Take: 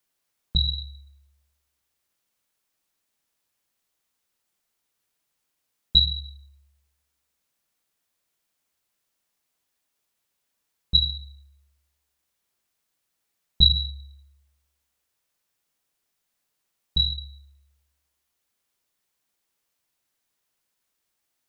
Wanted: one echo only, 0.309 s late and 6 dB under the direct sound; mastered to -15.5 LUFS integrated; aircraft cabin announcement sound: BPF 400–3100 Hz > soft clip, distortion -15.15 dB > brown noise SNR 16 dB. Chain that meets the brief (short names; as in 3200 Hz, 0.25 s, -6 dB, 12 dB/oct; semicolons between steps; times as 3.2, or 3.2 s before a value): BPF 400–3100 Hz; echo 0.309 s -6 dB; soft clip -17 dBFS; brown noise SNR 16 dB; gain +15 dB